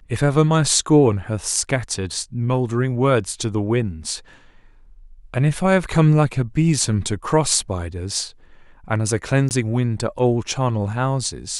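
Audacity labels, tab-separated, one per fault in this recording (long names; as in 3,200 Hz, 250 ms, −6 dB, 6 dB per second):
9.490000	9.510000	drop-out 19 ms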